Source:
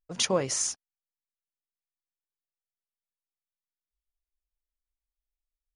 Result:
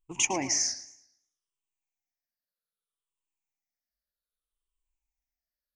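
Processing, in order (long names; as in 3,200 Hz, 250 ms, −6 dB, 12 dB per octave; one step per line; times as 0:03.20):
rippled gain that drifts along the octave scale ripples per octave 0.67, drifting −0.63 Hz, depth 24 dB
feedback echo with a swinging delay time 110 ms, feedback 36%, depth 134 cents, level −14 dB
level −5.5 dB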